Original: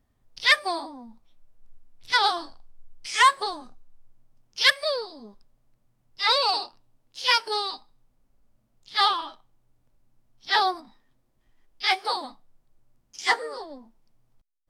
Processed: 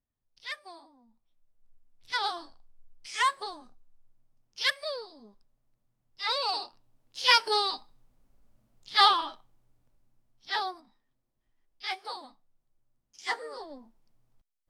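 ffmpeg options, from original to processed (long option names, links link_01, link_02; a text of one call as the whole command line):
ffmpeg -i in.wav -af "volume=9dB,afade=type=in:start_time=0.99:duration=1.32:silence=0.281838,afade=type=in:start_time=6.34:duration=1.15:silence=0.334965,afade=type=out:start_time=9.17:duration=1.55:silence=0.237137,afade=type=in:start_time=13.22:duration=0.48:silence=0.398107" out.wav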